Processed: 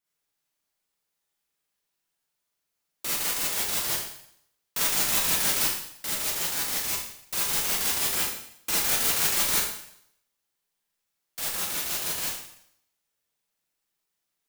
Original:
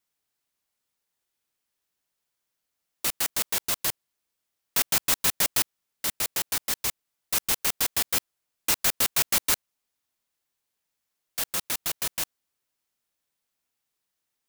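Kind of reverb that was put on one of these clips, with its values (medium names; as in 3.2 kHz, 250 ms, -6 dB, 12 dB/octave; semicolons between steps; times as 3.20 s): Schroeder reverb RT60 0.69 s, DRR -6.5 dB; trim -6.5 dB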